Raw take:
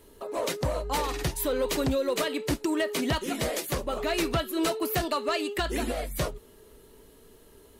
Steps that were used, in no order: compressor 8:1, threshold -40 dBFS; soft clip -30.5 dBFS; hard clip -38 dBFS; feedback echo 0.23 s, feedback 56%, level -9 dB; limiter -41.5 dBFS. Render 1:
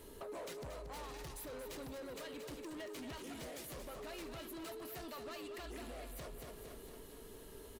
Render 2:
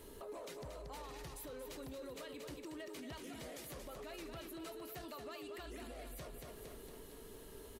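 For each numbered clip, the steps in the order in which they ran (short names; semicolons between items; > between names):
soft clip > compressor > hard clip > feedback echo > limiter; compressor > feedback echo > soft clip > limiter > hard clip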